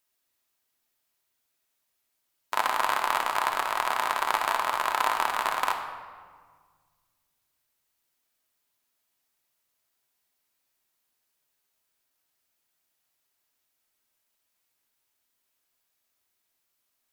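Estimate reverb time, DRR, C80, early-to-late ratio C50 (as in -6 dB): 1.7 s, 2.5 dB, 8.5 dB, 6.5 dB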